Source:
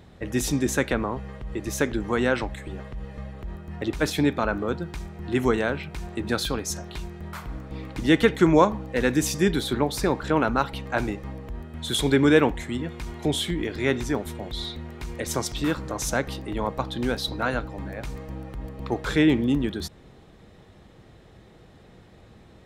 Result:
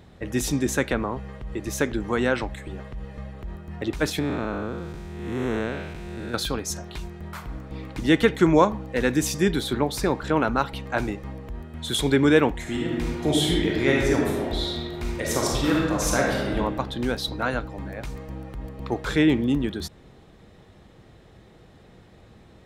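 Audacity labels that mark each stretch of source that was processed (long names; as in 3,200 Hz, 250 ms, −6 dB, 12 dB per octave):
4.190000	6.340000	spectrum smeared in time width 288 ms
12.610000	16.560000	thrown reverb, RT60 1.4 s, DRR −3 dB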